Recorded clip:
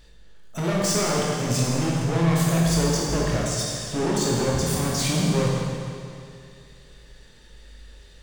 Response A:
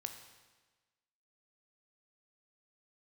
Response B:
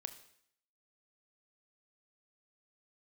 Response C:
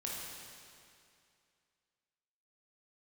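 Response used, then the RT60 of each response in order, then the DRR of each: C; 1.3, 0.65, 2.4 seconds; 5.5, 8.5, −4.5 decibels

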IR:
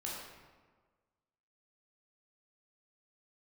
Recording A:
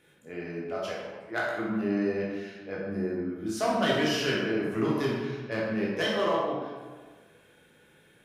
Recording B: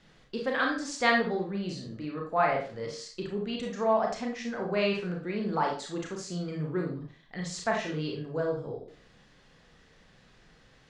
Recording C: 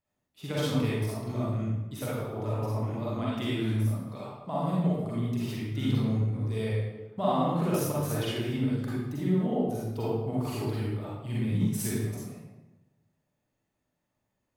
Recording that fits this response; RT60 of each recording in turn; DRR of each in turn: A; 1.5, 0.40, 1.0 seconds; −5.0, 0.0, −8.0 decibels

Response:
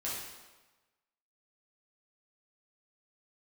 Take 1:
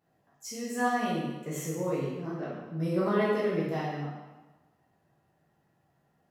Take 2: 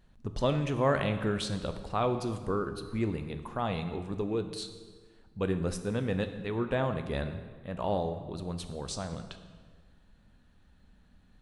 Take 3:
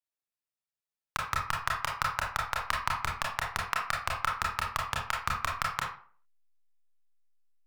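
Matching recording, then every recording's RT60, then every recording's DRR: 1; 1.2, 1.6, 0.45 seconds; −7.5, 8.0, −2.5 decibels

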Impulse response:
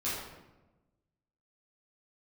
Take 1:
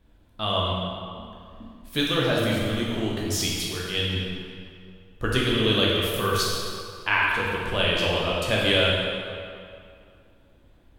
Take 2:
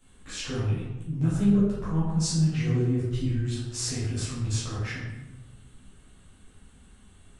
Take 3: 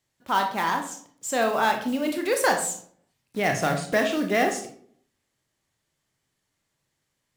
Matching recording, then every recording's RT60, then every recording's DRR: 2; 2.4, 1.1, 0.60 seconds; −4.5, −10.5, 3.5 decibels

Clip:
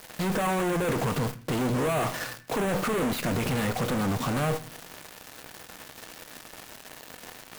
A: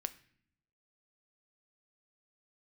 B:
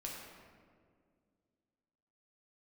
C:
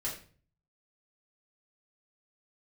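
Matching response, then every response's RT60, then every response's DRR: A; 0.60, 2.0, 0.45 seconds; 11.0, −3.0, −7.0 decibels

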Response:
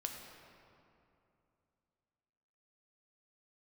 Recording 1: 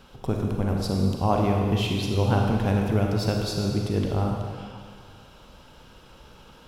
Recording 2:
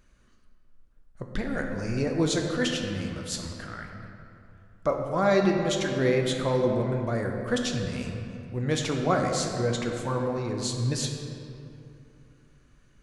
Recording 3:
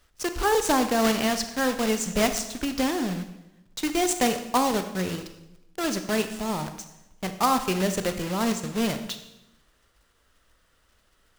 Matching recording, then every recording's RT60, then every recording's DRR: 2; 2.0, 2.7, 0.90 seconds; 0.5, 2.0, 8.0 decibels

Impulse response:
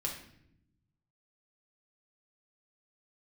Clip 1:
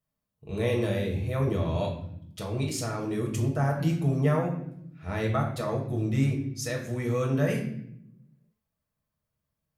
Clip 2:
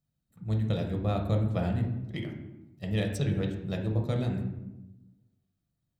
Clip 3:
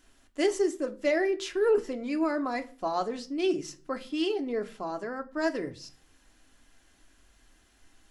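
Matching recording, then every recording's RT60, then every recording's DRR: 1; 0.75, 1.0, 0.40 seconds; −1.0, 1.0, 5.5 decibels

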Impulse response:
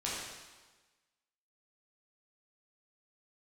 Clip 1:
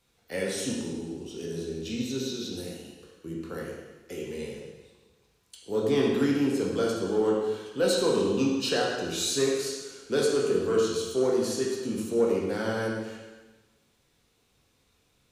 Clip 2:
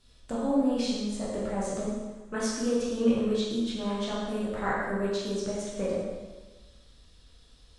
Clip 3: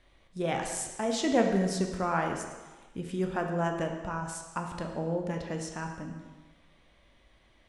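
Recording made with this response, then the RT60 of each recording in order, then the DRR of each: 2; 1.3, 1.3, 1.3 seconds; −3.0, −7.5, 2.5 decibels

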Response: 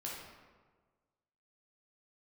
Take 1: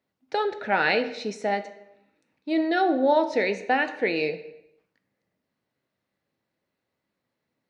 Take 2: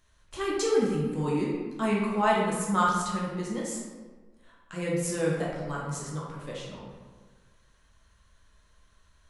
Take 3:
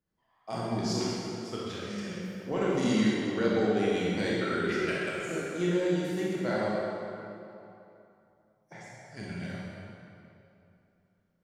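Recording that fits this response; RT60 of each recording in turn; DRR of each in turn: 2; 0.85, 1.5, 2.9 seconds; 8.5, −4.5, −7.0 decibels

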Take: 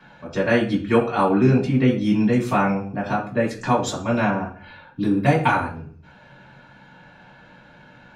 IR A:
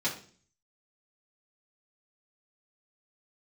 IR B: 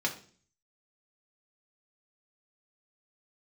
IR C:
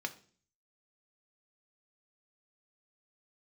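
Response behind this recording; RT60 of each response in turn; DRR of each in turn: A; 0.45, 0.45, 0.45 seconds; −6.0, 1.0, 7.0 decibels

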